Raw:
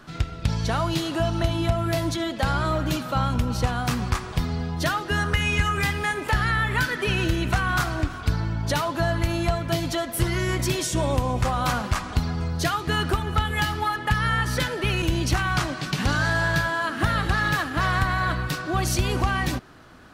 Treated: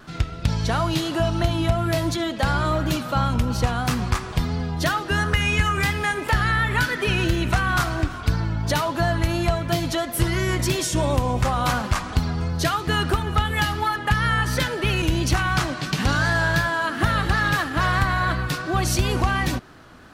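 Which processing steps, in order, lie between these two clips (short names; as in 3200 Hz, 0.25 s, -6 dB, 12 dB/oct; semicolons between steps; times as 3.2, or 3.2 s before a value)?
vibrato 2.9 Hz 38 cents; gain +2 dB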